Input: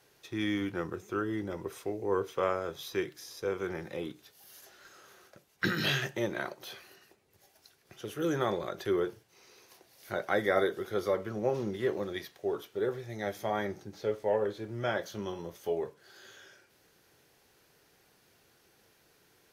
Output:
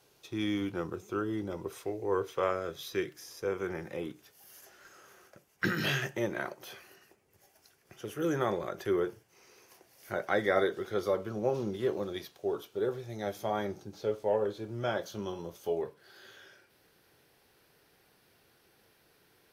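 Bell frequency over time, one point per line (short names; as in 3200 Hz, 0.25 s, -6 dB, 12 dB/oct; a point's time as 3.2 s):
bell -8 dB 0.4 oct
1800 Hz
from 1.73 s 220 Hz
from 2.51 s 880 Hz
from 3.1 s 3900 Hz
from 10.27 s 12000 Hz
from 11.03 s 1900 Hz
from 15.81 s 6800 Hz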